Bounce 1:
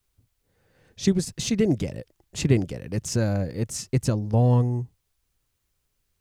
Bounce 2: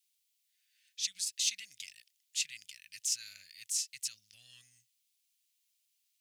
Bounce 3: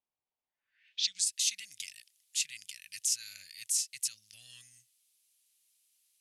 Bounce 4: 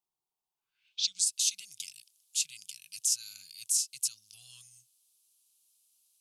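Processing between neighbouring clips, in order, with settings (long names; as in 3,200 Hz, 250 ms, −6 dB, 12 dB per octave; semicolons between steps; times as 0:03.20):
brickwall limiter −14.5 dBFS, peak gain reduction 8 dB; inverse Chebyshev high-pass filter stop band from 970 Hz, stop band 50 dB
in parallel at −1 dB: downward compressor, threshold −42 dBFS, peak gain reduction 15 dB; on the sum: low-pass filter sweep 860 Hz → 11,000 Hz, 0:00.58–0:01.31; level −2 dB
phaser with its sweep stopped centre 370 Hz, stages 8; level +3 dB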